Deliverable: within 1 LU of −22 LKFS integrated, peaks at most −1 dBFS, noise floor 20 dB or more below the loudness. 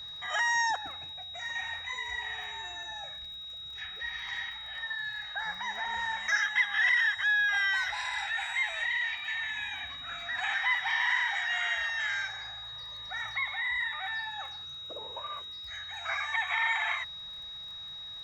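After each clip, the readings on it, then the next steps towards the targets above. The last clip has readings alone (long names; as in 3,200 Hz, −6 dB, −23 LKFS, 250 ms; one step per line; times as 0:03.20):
crackle rate 21 per second; interfering tone 3,800 Hz; level of the tone −40 dBFS; integrated loudness −31.0 LKFS; sample peak −16.0 dBFS; target loudness −22.0 LKFS
→ click removal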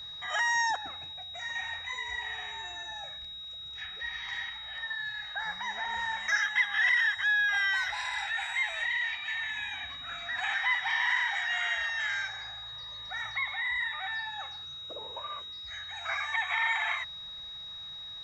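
crackle rate 0.055 per second; interfering tone 3,800 Hz; level of the tone −40 dBFS
→ notch filter 3,800 Hz, Q 30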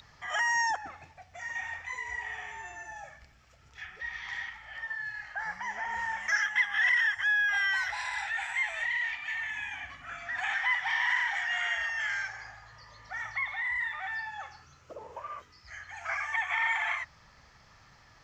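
interfering tone none found; integrated loudness −30.5 LKFS; sample peak −16.5 dBFS; target loudness −22.0 LKFS
→ level +8.5 dB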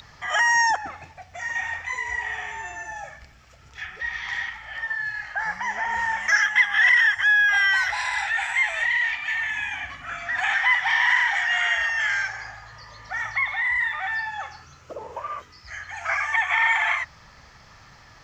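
integrated loudness −22.0 LKFS; sample peak −8.0 dBFS; background noise floor −51 dBFS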